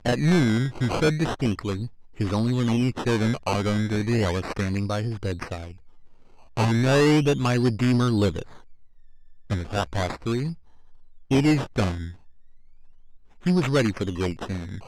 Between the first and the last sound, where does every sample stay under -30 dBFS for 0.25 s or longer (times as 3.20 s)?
1.87–2.20 s
5.71–6.57 s
8.42–9.50 s
10.52–11.31 s
12.09–13.46 s